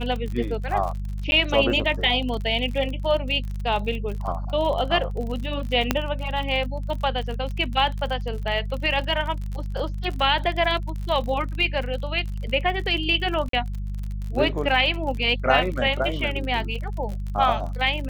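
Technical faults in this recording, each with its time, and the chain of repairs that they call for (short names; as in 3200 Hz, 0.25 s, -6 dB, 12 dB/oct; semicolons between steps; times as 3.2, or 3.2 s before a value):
crackle 47/s -30 dBFS
hum 50 Hz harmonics 4 -29 dBFS
1.31–1.32 gap 11 ms
5.91 pop -4 dBFS
13.49–13.53 gap 43 ms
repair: de-click; de-hum 50 Hz, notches 4; interpolate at 1.31, 11 ms; interpolate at 13.49, 43 ms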